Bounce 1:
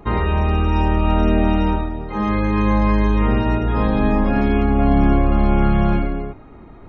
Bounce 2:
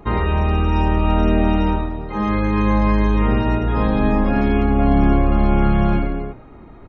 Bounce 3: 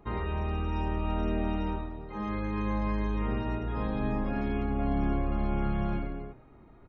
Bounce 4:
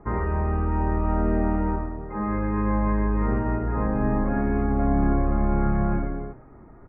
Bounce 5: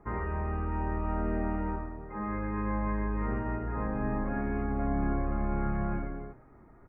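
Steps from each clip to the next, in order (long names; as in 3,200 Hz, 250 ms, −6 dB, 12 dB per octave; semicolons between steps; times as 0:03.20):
echo with shifted repeats 109 ms, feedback 43%, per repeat +96 Hz, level −23.5 dB
tuned comb filter 130 Hz, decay 0.85 s, harmonics odd, mix 60%; level −6 dB
Butterworth low-pass 2,000 Hz 48 dB per octave; level +7 dB
high-shelf EQ 2,000 Hz +9.5 dB; level −8.5 dB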